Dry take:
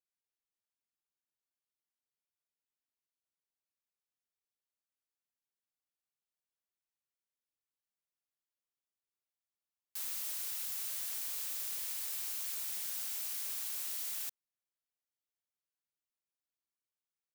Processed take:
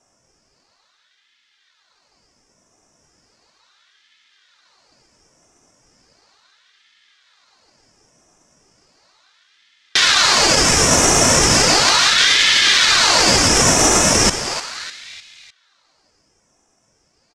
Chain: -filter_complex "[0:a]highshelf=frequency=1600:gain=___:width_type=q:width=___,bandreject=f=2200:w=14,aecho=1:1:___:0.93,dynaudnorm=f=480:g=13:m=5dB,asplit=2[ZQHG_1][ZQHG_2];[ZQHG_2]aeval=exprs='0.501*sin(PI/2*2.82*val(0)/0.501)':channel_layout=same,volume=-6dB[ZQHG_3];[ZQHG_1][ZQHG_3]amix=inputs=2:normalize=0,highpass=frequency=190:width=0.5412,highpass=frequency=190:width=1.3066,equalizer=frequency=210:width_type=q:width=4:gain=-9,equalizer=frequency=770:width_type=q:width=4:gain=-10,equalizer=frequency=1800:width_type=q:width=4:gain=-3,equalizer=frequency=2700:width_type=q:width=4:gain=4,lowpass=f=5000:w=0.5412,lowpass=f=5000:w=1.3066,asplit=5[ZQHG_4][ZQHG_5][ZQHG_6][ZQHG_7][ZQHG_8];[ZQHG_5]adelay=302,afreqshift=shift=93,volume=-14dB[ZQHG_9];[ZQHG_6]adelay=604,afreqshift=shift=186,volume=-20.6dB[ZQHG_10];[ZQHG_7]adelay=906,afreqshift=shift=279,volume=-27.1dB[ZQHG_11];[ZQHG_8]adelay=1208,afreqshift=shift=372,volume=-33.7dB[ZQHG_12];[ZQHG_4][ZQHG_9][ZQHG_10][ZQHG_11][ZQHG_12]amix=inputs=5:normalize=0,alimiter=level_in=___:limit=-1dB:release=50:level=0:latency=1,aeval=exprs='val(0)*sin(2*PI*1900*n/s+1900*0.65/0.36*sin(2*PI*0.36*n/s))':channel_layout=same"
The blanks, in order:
12, 3, 2.5, 13.5dB